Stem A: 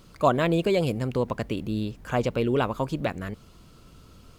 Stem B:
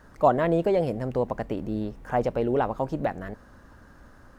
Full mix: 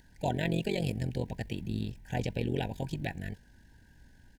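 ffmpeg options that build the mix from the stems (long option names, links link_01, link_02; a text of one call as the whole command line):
ffmpeg -i stem1.wav -i stem2.wav -filter_complex "[0:a]equalizer=frequency=800:width=1.4:gain=-15,tremolo=f=46:d=0.889,volume=-0.5dB[link_01];[1:a]equalizer=frequency=520:width=0.98:gain=-15,adelay=1.7,volume=-5.5dB,asplit=2[link_02][link_03];[link_03]apad=whole_len=193258[link_04];[link_01][link_04]sidechaingate=range=-10dB:threshold=-48dB:ratio=16:detection=peak[link_05];[link_05][link_02]amix=inputs=2:normalize=0,asuperstop=centerf=1200:order=20:qfactor=2.4" out.wav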